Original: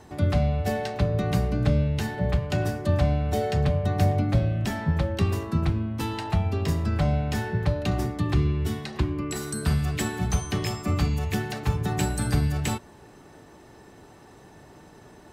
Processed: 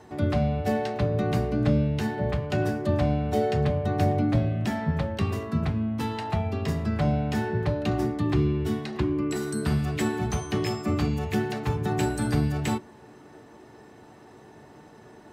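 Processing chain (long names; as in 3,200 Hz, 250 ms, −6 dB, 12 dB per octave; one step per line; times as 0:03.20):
high-pass filter 120 Hz 6 dB per octave
high-shelf EQ 4,400 Hz −6.5 dB
on a send: convolution reverb RT60 0.15 s, pre-delay 3 ms, DRR 8.5 dB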